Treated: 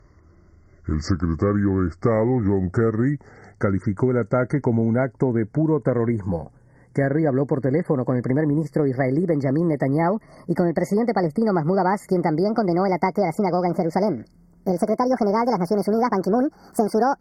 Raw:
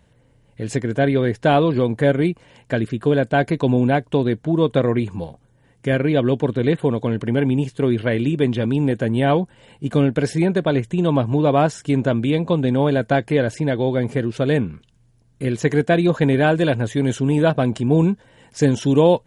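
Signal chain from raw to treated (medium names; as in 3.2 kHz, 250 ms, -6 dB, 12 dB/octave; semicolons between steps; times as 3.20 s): gliding tape speed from 65% -> 159%; compression 4:1, threshold -22 dBFS, peak gain reduction 11 dB; brick-wall FIR band-stop 2.2–4.4 kHz; treble shelf 5.4 kHz -8.5 dB; trim +4.5 dB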